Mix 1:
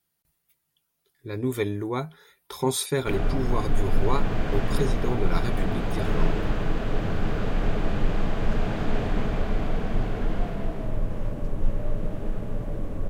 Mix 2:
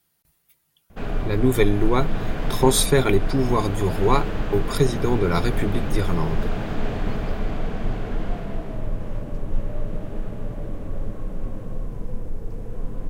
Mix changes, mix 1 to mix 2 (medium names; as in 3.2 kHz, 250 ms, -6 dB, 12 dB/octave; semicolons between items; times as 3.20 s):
speech +7.5 dB; background: entry -2.10 s